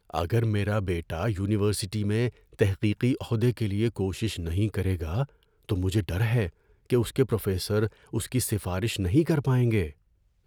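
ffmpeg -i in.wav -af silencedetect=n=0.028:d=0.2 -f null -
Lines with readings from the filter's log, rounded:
silence_start: 2.29
silence_end: 2.59 | silence_duration: 0.30
silence_start: 5.24
silence_end: 5.69 | silence_duration: 0.45
silence_start: 6.48
silence_end: 6.90 | silence_duration: 0.42
silence_start: 7.87
silence_end: 8.13 | silence_duration: 0.26
silence_start: 9.88
silence_end: 10.46 | silence_duration: 0.58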